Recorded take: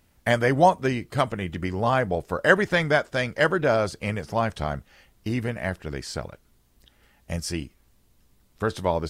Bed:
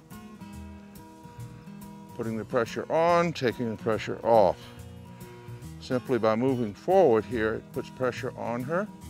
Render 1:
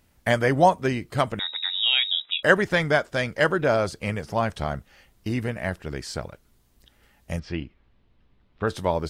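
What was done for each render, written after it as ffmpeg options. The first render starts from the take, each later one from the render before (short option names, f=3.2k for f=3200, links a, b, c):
-filter_complex "[0:a]asettb=1/sr,asplit=3[a][b][c];[a]atrim=end=1.394[d];[b]atrim=start=1.39:end=2.43,asetpts=PTS-STARTPTS,afade=t=in:d=0.004:c=qsin,afade=t=out:st=1.036:d=0.004:c=qsin,lowpass=f=3.3k:t=q:w=0.5098,lowpass=f=3.3k:t=q:w=0.6013,lowpass=f=3.3k:t=q:w=0.9,lowpass=f=3.3k:t=q:w=2.563,afreqshift=-3900[e];[c]atrim=start=2.426[f];[d][e]acrossfade=d=0.004:c1=hsin:c2=qsin[g];[g][f]acrossfade=d=0.004:c1=qsin:c2=hsin,asettb=1/sr,asplit=3[h][i][j];[h]atrim=end=7.394[k];[i]atrim=start=7.39:end=8.67,asetpts=PTS-STARTPTS,afade=t=in:d=0.004:c=qsin,afade=t=out:st=1.276:d=0.004:c=qsin,lowpass=f=3.5k:w=0.5412,lowpass=f=3.5k:w=1.3066[l];[j]atrim=start=8.666[m];[k][l]acrossfade=d=0.004:c1=hsin:c2=qsin[n];[n][m]acrossfade=d=0.004:c1=qsin:c2=hsin"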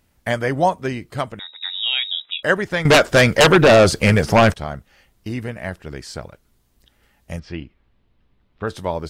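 -filter_complex "[0:a]asettb=1/sr,asplit=3[a][b][c];[a]atrim=end=2.854[d];[b]atrim=start=2.85:end=4.54,asetpts=PTS-STARTPTS,afade=t=in:d=0.004:c=qsin,afade=t=out:st=1.686:d=0.004:c=qsin,aeval=exprs='0.473*sin(PI/2*3.98*val(0)/0.473)':c=same[e];[c]atrim=start=4.536[f];[d][e]acrossfade=d=0.004:c1=hsin:c2=qsin[g];[g][f]acrossfade=d=0.004:c1=qsin:c2=hsin,asplit=2[h][i];[h]atrim=end=1.61,asetpts=PTS-STARTPTS,afade=t=out:st=1.1:d=0.51:silence=0.281838[j];[i]atrim=start=1.61,asetpts=PTS-STARTPTS,afade=t=in:d=0.004:c=hsin:silence=0.281838[k];[j][k]concat=n=2:v=0:a=1"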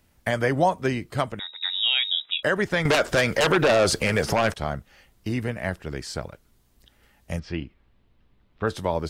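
-filter_complex "[0:a]acrossover=split=320|3000[a][b][c];[a]acompressor=threshold=-22dB:ratio=6[d];[d][b][c]amix=inputs=3:normalize=0,alimiter=limit=-10.5dB:level=0:latency=1:release=88"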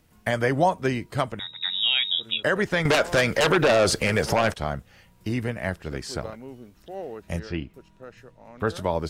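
-filter_complex "[1:a]volume=-15.5dB[a];[0:a][a]amix=inputs=2:normalize=0"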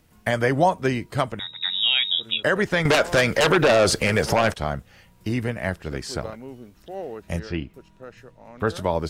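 -af "volume=2dB"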